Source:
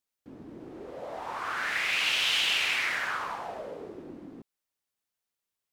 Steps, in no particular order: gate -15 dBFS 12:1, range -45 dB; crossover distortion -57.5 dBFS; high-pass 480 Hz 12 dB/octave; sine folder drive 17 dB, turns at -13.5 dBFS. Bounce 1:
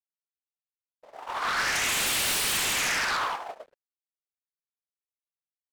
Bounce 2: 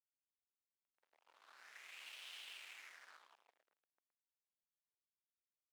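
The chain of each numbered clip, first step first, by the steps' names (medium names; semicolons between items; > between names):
high-pass > sine folder > gate > crossover distortion; gate > sine folder > crossover distortion > high-pass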